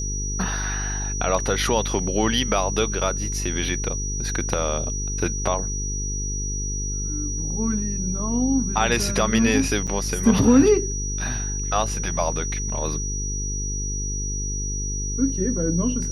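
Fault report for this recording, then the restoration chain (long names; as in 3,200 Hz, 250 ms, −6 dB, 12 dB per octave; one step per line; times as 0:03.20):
mains buzz 50 Hz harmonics 9 −28 dBFS
whistle 5,800 Hz −29 dBFS
0:09.87–0:09.88: drop-out 7 ms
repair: notch filter 5,800 Hz, Q 30
hum removal 50 Hz, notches 9
repair the gap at 0:09.87, 7 ms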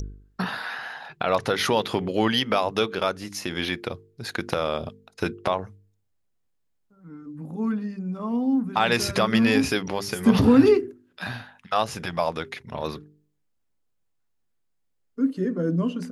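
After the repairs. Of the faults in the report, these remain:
none of them is left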